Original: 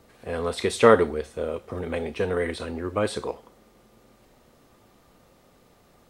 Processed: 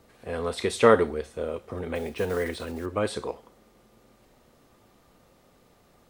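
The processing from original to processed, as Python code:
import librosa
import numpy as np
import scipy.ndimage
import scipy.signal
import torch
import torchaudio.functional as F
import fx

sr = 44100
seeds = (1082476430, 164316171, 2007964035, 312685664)

y = fx.block_float(x, sr, bits=5, at=(1.95, 2.86))
y = y * 10.0 ** (-2.0 / 20.0)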